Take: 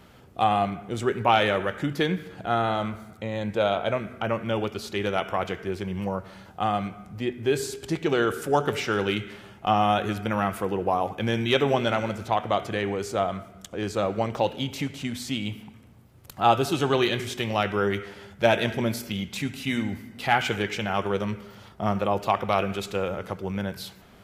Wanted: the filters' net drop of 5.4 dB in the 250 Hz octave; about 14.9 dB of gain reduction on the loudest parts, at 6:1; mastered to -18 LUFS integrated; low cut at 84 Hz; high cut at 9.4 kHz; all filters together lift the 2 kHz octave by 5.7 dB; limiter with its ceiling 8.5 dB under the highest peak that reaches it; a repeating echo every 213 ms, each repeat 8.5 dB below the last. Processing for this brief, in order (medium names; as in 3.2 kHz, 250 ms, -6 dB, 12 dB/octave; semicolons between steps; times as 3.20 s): high-pass 84 Hz; low-pass 9.4 kHz; peaking EQ 250 Hz -7.5 dB; peaking EQ 2 kHz +7.5 dB; compression 6:1, threshold -30 dBFS; peak limiter -23.5 dBFS; feedback delay 213 ms, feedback 38%, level -8.5 dB; trim +18 dB